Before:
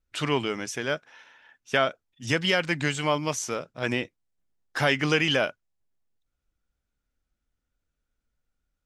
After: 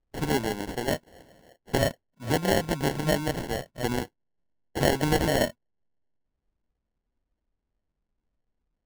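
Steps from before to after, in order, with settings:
decimation without filtering 36×

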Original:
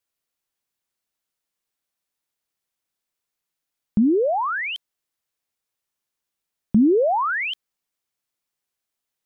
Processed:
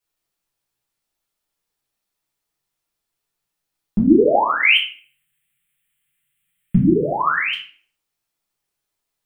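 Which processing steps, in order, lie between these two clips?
0:04.63–0:07.20: drawn EQ curve 100 Hz 0 dB, 160 Hz +13 dB, 230 Hz −8 dB, 350 Hz −4 dB, 520 Hz −10 dB, 990 Hz −8 dB, 2,000 Hz +12 dB, 3,200 Hz +11 dB, 5,400 Hz −26 dB, 8,000 Hz +9 dB
convolution reverb RT60 0.50 s, pre-delay 5 ms, DRR −6 dB
level −2.5 dB

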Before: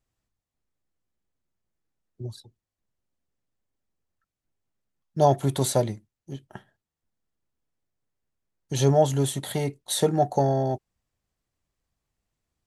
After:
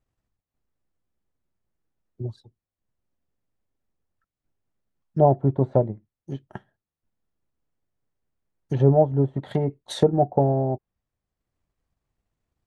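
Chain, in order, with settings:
high-shelf EQ 2,900 Hz −10.5 dB
transient designer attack +2 dB, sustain −5 dB
treble cut that deepens with the level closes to 760 Hz, closed at −21.5 dBFS
level +3 dB

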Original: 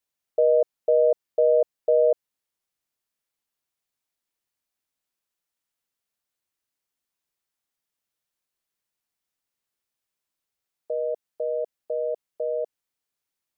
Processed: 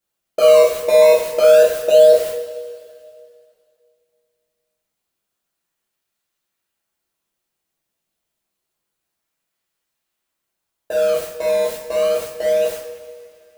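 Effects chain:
converter with a step at zero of −34 dBFS
noise gate −36 dBFS, range −46 dB
in parallel at −9.5 dB: sample-and-hold swept by an LFO 16×, swing 160% 0.28 Hz
on the sum: coupled-rooms reverb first 0.47 s, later 2.4 s, from −16 dB, DRR −7 dB

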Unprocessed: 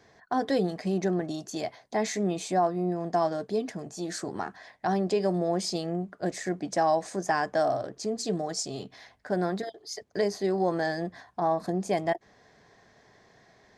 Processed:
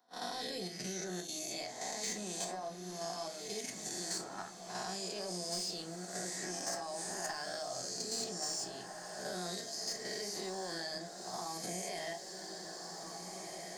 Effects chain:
peak hold with a rise ahead of every peak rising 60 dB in 1.16 s
first-order pre-emphasis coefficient 0.9
noise gate −47 dBFS, range −39 dB
dynamic equaliser 4,500 Hz, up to +5 dB, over −54 dBFS, Q 6.3
output level in coarse steps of 9 dB
soft clipping −29.5 dBFS, distortion −19 dB
feedback delay with all-pass diffusion 1,763 ms, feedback 51%, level −12.5 dB
rectangular room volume 190 cubic metres, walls furnished, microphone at 1 metre
multiband upward and downward compressor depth 70%
level +1.5 dB

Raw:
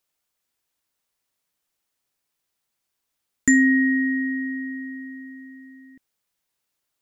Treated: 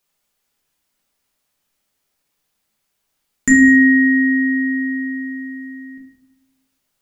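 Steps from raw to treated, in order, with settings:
in parallel at 0 dB: downward compressor, threshold −28 dBFS, peak gain reduction 14.5 dB
on the sum: convolution reverb RT60 0.90 s, pre-delay 5 ms, DRR −1.5 dB
level −2 dB

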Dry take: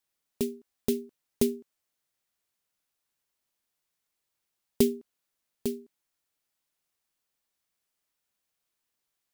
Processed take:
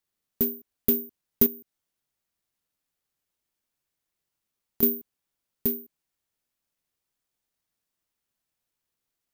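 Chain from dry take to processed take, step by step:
low-shelf EQ 410 Hz +11 dB
0:01.46–0:04.83: downward compressor 6 to 1, threshold −31 dBFS, peak gain reduction 19 dB
bad sample-rate conversion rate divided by 3×, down none, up zero stuff
level −7 dB

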